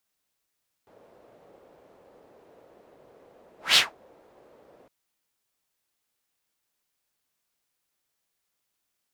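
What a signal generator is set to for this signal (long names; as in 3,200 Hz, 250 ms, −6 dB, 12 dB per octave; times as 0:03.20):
pass-by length 4.01 s, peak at 0:02.89, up 0.18 s, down 0.19 s, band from 520 Hz, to 3,500 Hz, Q 2.2, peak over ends 39.5 dB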